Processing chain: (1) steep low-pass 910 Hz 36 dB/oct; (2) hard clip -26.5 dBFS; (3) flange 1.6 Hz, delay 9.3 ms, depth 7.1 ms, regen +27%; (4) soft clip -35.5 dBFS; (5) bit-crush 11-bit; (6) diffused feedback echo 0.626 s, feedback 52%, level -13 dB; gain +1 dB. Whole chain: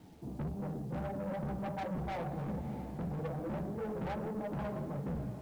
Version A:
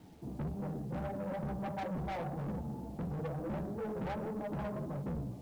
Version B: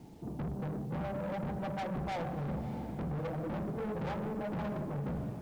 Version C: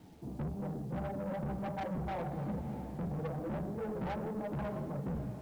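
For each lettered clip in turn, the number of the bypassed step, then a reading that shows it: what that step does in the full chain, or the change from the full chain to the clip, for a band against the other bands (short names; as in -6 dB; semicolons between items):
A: 6, echo-to-direct -11.5 dB to none; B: 3, 4 kHz band +2.5 dB; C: 2, distortion -8 dB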